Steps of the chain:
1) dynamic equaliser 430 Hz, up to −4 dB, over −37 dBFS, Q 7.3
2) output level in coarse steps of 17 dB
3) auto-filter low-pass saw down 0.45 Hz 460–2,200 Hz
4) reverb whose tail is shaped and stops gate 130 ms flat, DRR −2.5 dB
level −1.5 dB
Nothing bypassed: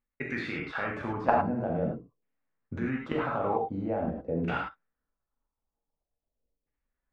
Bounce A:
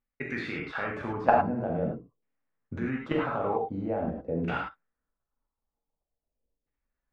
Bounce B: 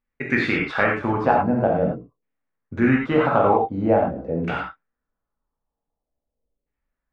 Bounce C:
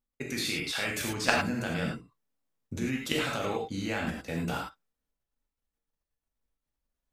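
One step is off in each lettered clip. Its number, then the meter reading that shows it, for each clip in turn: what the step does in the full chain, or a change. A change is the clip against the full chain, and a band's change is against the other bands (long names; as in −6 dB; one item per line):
1, change in momentary loudness spread +2 LU
2, change in crest factor −6.0 dB
3, 4 kHz band +16.0 dB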